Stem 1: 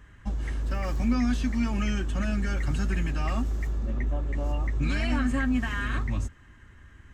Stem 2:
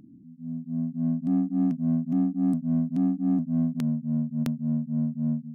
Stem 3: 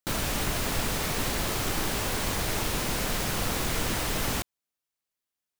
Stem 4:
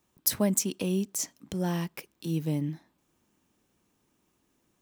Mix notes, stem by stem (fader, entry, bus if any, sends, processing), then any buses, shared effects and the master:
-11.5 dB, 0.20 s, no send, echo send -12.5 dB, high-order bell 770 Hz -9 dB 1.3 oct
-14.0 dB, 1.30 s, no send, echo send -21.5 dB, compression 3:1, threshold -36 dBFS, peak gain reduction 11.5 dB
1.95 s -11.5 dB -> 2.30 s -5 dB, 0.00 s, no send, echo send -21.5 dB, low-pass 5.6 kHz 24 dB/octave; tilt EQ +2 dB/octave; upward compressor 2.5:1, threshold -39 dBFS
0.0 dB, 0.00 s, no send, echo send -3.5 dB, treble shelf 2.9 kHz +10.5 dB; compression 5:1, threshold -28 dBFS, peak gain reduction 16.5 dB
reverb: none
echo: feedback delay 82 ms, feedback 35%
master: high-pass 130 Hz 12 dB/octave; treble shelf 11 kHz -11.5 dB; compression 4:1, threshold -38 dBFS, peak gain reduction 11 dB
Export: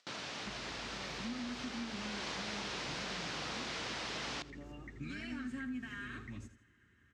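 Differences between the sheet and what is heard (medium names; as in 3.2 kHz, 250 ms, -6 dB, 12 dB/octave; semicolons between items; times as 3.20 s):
stem 2: muted; stem 4: muted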